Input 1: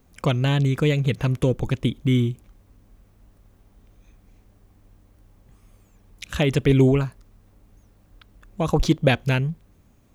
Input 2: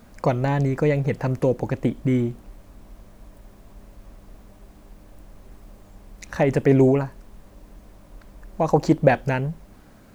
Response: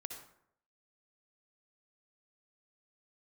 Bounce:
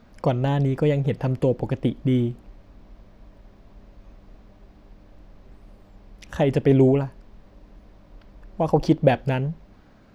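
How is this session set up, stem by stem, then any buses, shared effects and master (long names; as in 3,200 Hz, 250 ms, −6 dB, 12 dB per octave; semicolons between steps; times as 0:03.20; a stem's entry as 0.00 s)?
−11.0 dB, 0.00 s, no send, no processing
−3.0 dB, 0.00 s, no send, low-pass filter 5,200 Hz 24 dB per octave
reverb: not used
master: no processing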